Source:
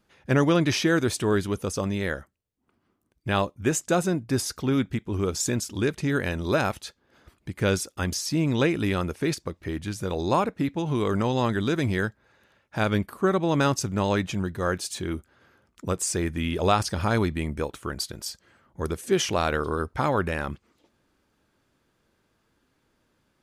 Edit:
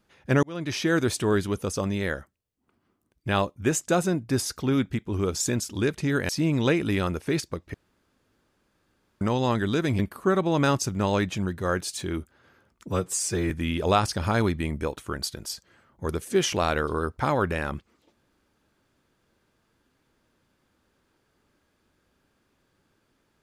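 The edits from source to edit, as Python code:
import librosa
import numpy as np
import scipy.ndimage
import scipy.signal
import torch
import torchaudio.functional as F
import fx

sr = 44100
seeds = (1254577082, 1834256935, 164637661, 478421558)

y = fx.edit(x, sr, fx.fade_in_span(start_s=0.43, length_s=0.56),
    fx.cut(start_s=6.29, length_s=1.94),
    fx.room_tone_fill(start_s=9.68, length_s=1.47),
    fx.cut(start_s=11.93, length_s=1.03),
    fx.stretch_span(start_s=15.86, length_s=0.41, factor=1.5), tone=tone)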